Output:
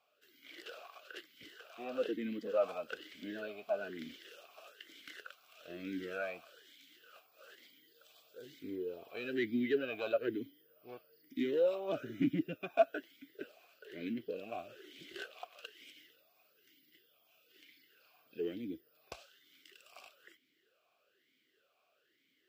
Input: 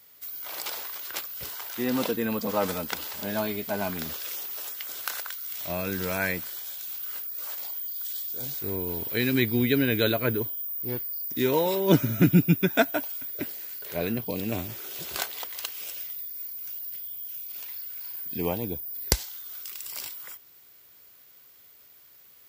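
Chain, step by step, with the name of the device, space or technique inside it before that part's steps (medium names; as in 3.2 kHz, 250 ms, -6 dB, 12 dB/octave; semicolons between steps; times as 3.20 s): talk box (valve stage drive 18 dB, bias 0.2; talking filter a-i 1.1 Hz); trim +2.5 dB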